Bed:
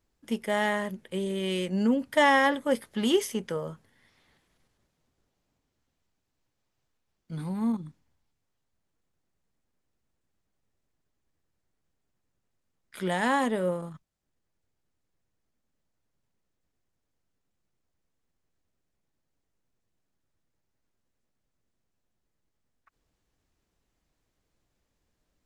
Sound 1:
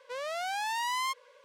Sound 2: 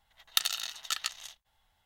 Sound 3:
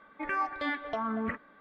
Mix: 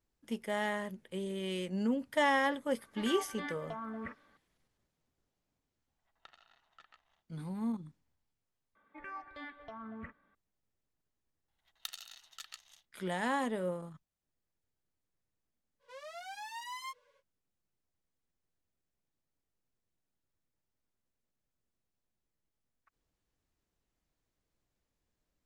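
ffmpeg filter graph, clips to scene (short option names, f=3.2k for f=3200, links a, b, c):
-filter_complex "[3:a]asplit=2[a][b];[2:a]asplit=2[c][d];[0:a]volume=-7.5dB[e];[c]lowpass=1.3k[f];[b]asubboost=boost=5.5:cutoff=180[g];[1:a]asplit=2[h][i];[i]adelay=8.3,afreqshift=-2.4[j];[h][j]amix=inputs=2:normalize=1[k];[e]asplit=2[l][m];[l]atrim=end=8.754[n];[g]atrim=end=1.6,asetpts=PTS-STARTPTS,volume=-14dB[o];[m]atrim=start=10.346[p];[a]atrim=end=1.6,asetpts=PTS-STARTPTS,volume=-9.5dB,afade=t=in:d=0.004:c=hsin,afade=t=out:st=1.596:d=0.004:c=hsin,adelay=2770[q];[f]atrim=end=1.85,asetpts=PTS-STARTPTS,volume=-16.5dB,afade=t=in:d=0.004:c=hsin,afade=t=out:st=1.846:d=0.004:c=hsin,adelay=5880[r];[d]atrim=end=1.85,asetpts=PTS-STARTPTS,volume=-16dB,afade=t=in:d=0.004:c=hsin,afade=t=out:st=1.846:d=0.004:c=hsin,adelay=11480[s];[k]atrim=end=1.44,asetpts=PTS-STARTPTS,volume=-9dB,afade=t=in:d=0.05,afade=t=out:st=1.39:d=0.05,adelay=15790[t];[n][o]acrossfade=d=0.004:c1=hsin:c2=hsin[u];[u][p]acrossfade=d=0.004:c1=hsin:c2=hsin[v];[v][q][r][s][t]amix=inputs=5:normalize=0"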